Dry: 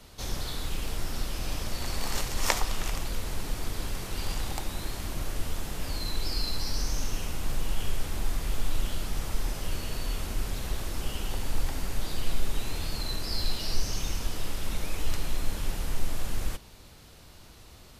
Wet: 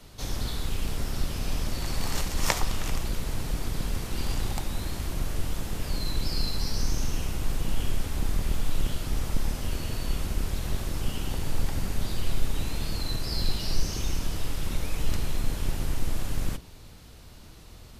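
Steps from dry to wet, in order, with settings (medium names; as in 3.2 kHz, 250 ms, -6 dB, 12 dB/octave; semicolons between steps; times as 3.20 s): octave divider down 1 oct, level +4 dB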